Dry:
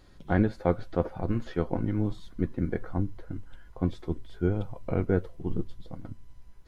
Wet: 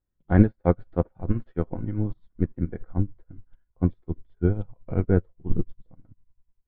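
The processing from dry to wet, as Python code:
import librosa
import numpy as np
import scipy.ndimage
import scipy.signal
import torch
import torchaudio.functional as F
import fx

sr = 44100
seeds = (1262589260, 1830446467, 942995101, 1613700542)

y = scipy.signal.sosfilt(scipy.signal.butter(2, 2300.0, 'lowpass', fs=sr, output='sos'), x)
y = fx.low_shelf(y, sr, hz=210.0, db=7.0)
y = fx.upward_expand(y, sr, threshold_db=-41.0, expansion=2.5)
y = F.gain(torch.from_numpy(y), 6.5).numpy()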